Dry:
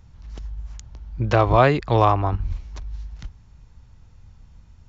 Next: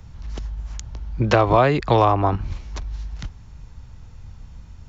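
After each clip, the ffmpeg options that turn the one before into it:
-filter_complex "[0:a]acrossover=split=140|730[s0][s1][s2];[s0]acompressor=threshold=0.0178:ratio=4[s3];[s1]acompressor=threshold=0.0631:ratio=4[s4];[s2]acompressor=threshold=0.0447:ratio=4[s5];[s3][s4][s5]amix=inputs=3:normalize=0,volume=2.37"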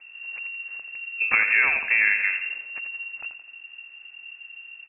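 -filter_complex "[0:a]asplit=2[s0][s1];[s1]aecho=0:1:85|170|255|340|425:0.355|0.163|0.0751|0.0345|0.0159[s2];[s0][s2]amix=inputs=2:normalize=0,lowpass=f=2400:t=q:w=0.5098,lowpass=f=2400:t=q:w=0.6013,lowpass=f=2400:t=q:w=0.9,lowpass=f=2400:t=q:w=2.563,afreqshift=-2800,volume=0.562"

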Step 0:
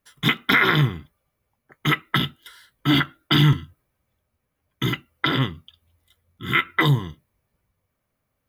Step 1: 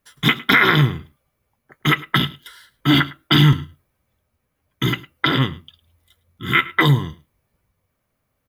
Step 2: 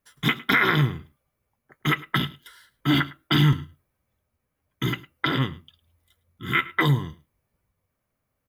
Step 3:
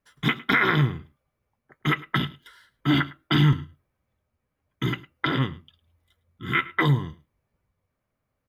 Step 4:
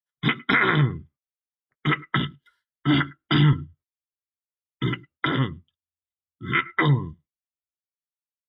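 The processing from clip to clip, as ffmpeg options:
-af "aecho=1:1:106:0.1,volume=1.5"
-af "equalizer=f=3600:w=1.5:g=-2.5,volume=0.531"
-af "lowpass=f=3600:p=1"
-af "agate=range=0.0891:threshold=0.00251:ratio=16:detection=peak,afftdn=nr=19:nf=-37,volume=1.12"

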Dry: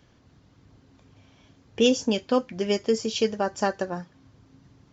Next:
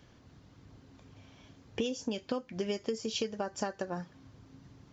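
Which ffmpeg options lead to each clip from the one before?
-af "acompressor=threshold=0.0316:ratio=12"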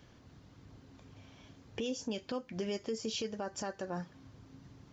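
-af "alimiter=level_in=1.41:limit=0.0631:level=0:latency=1:release=23,volume=0.708"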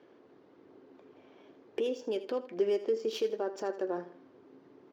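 -af "adynamicsmooth=sensitivity=8:basefreq=2600,highpass=f=380:t=q:w=3.5,aecho=1:1:80|160|240:0.2|0.0718|0.0259"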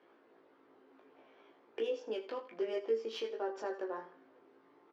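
-filter_complex "[0:a]bandpass=f=1400:t=q:w=0.59:csg=0,asplit=2[s0][s1];[s1]adelay=18,volume=0.473[s2];[s0][s2]amix=inputs=2:normalize=0,flanger=delay=17:depth=2:speed=0.63,volume=1.33"

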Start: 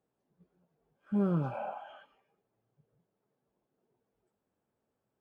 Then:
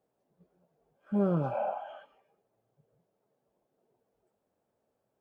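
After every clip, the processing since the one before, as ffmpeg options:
-af "equalizer=f=610:t=o:w=1:g=8"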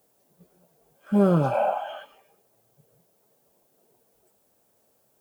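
-af "crystalizer=i=4:c=0,volume=2.51"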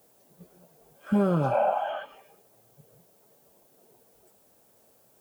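-filter_complex "[0:a]acrossover=split=1200|2400[s0][s1][s2];[s0]acompressor=threshold=0.0447:ratio=4[s3];[s1]acompressor=threshold=0.00631:ratio=4[s4];[s2]acompressor=threshold=0.001:ratio=4[s5];[s3][s4][s5]amix=inputs=3:normalize=0,volume=1.78"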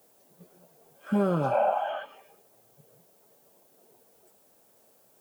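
-af "highpass=f=170:p=1"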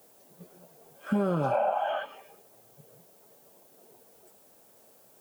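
-af "acompressor=threshold=0.0447:ratio=5,volume=1.5"

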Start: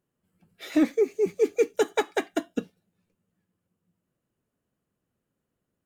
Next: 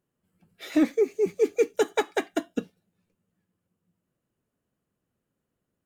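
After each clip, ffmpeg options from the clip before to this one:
-af anull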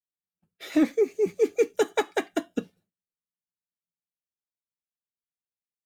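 -af "agate=range=0.0224:threshold=0.00251:ratio=3:detection=peak"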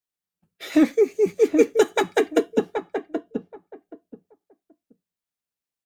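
-filter_complex "[0:a]asplit=2[s0][s1];[s1]adelay=777,lowpass=f=830:p=1,volume=0.631,asplit=2[s2][s3];[s3]adelay=777,lowpass=f=830:p=1,volume=0.21,asplit=2[s4][s5];[s5]adelay=777,lowpass=f=830:p=1,volume=0.21[s6];[s0][s2][s4][s6]amix=inputs=4:normalize=0,volume=1.68"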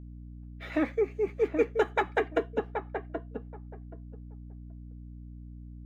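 -filter_complex "[0:a]acrossover=split=550 2600:gain=0.251 1 0.0794[s0][s1][s2];[s0][s1][s2]amix=inputs=3:normalize=0,aeval=exprs='val(0)+0.00891*(sin(2*PI*60*n/s)+sin(2*PI*2*60*n/s)/2+sin(2*PI*3*60*n/s)/3+sin(2*PI*4*60*n/s)/4+sin(2*PI*5*60*n/s)/5)':c=same,volume=0.794"

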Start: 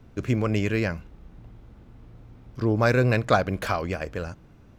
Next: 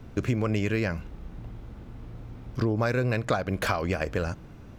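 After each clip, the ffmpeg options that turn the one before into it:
-af "acompressor=threshold=0.0355:ratio=6,volume=2"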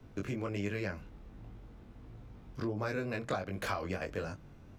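-filter_complex "[0:a]flanger=delay=19.5:depth=2.2:speed=1.4,acrossover=split=130|880|1900[s0][s1][s2][s3];[s0]asoftclip=type=tanh:threshold=0.0112[s4];[s4][s1][s2][s3]amix=inputs=4:normalize=0,volume=0.531"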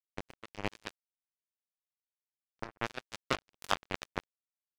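-af "acrusher=bits=3:mix=0:aa=0.5,volume=2.99"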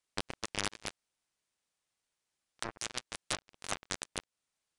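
-af "acompressor=threshold=0.0112:ratio=5,aeval=exprs='(mod(29.9*val(0)+1,2)-1)/29.9':c=same,aresample=22050,aresample=44100,volume=4.22"

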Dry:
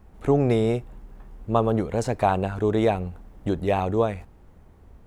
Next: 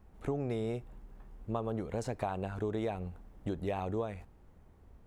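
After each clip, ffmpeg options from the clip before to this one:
-af "acompressor=threshold=0.0708:ratio=5,volume=0.398"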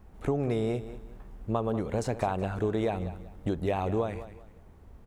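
-af "aecho=1:1:190|380|570:0.211|0.0592|0.0166,volume=2"

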